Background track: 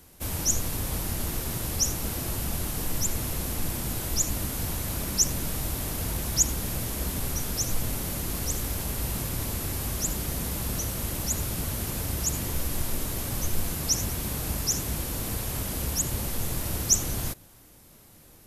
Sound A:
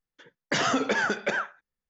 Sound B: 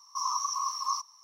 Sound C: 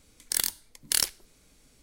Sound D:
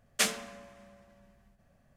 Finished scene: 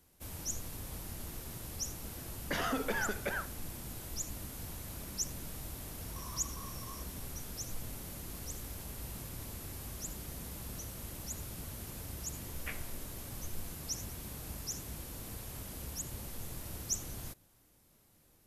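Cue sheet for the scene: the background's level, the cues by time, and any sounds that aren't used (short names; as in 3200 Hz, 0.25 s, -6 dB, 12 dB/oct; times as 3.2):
background track -13.5 dB
1.99 add A -9 dB + high shelf 5700 Hz -9 dB
6.01 add B -7.5 dB + compressor 2:1, threshold -50 dBFS
12.47 add D -17.5 dB + resonant high shelf 3400 Hz -14 dB, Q 3
not used: C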